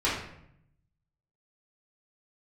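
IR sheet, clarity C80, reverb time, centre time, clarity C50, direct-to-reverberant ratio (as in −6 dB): 6.5 dB, 0.70 s, 47 ms, 2.5 dB, −9.5 dB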